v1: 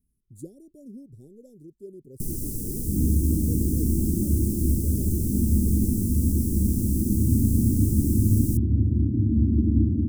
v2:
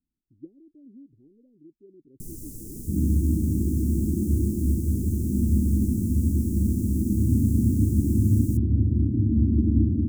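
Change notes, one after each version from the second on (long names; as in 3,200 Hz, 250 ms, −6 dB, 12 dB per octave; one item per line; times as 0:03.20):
speech: add formant resonators in series u
first sound −9.0 dB
master: add parametric band 6,900 Hz +4.5 dB 0.4 octaves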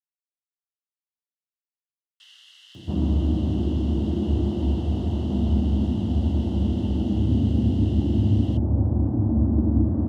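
speech: muted
first sound: add four-pole ladder band-pass 3,100 Hz, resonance 75%
master: remove inverse Chebyshev band-stop filter 990–2,600 Hz, stop band 70 dB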